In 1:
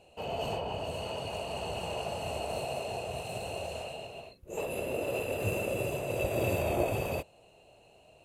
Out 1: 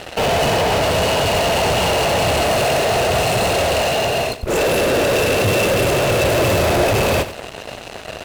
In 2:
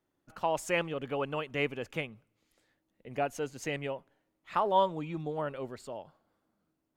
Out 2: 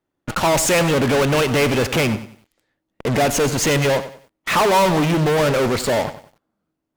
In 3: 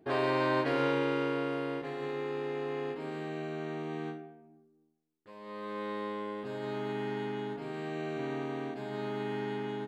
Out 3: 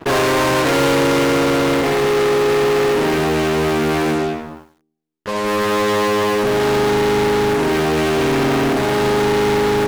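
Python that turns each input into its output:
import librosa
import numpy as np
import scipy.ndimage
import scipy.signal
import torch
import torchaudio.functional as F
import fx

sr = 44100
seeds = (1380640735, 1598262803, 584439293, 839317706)

p1 = fx.high_shelf(x, sr, hz=6100.0, db=-6.5)
p2 = fx.fuzz(p1, sr, gain_db=53.0, gate_db=-58.0)
p3 = p1 + F.gain(torch.from_numpy(p2), -6.5).numpy()
p4 = fx.echo_crushed(p3, sr, ms=94, feedback_pct=35, bits=8, wet_db=-13)
y = F.gain(torch.from_numpy(p4), 2.5).numpy()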